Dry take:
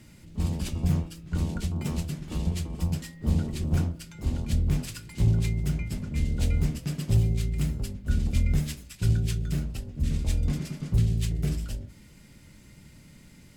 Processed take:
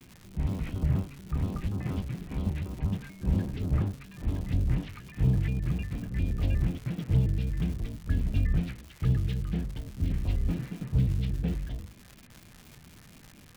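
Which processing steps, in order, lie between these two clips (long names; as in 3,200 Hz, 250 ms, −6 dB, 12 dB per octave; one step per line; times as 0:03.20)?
low-pass filter 3,000 Hz 24 dB per octave
surface crackle 280 per second −37 dBFS
pitch modulation by a square or saw wave square 4.2 Hz, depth 250 cents
level −2 dB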